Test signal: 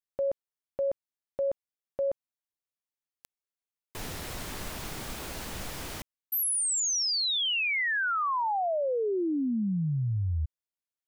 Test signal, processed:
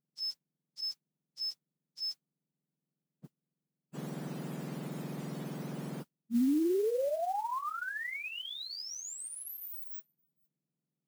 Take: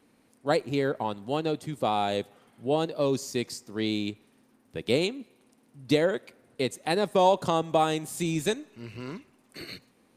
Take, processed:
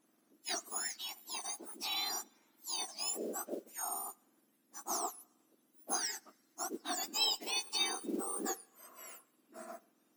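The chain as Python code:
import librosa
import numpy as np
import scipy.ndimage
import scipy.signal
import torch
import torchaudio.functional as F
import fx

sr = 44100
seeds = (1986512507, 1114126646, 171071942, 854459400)

y = fx.octave_mirror(x, sr, pivot_hz=1700.0)
y = fx.mod_noise(y, sr, seeds[0], snr_db=24)
y = y * librosa.db_to_amplitude(-7.0)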